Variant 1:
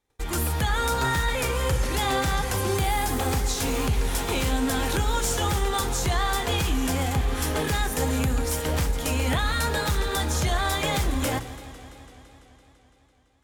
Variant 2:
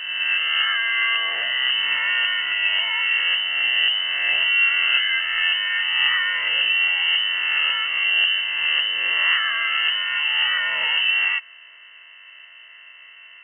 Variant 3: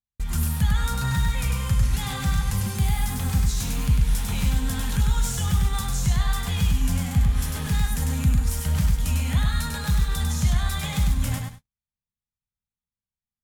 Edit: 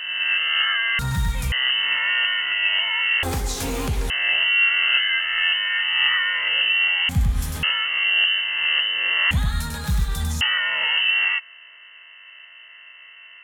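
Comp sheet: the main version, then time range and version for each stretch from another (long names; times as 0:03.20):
2
0:00.99–0:01.52: punch in from 3
0:03.23–0:04.10: punch in from 1
0:07.09–0:07.63: punch in from 3
0:09.31–0:10.41: punch in from 3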